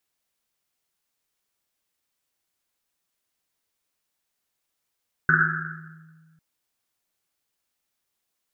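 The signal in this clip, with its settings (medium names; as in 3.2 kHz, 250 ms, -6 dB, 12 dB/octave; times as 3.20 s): Risset drum, pitch 160 Hz, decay 2.06 s, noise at 1.5 kHz, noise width 390 Hz, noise 70%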